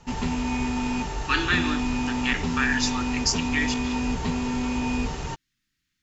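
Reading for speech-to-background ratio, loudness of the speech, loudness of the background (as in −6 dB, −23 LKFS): 1.0 dB, −26.5 LKFS, −27.5 LKFS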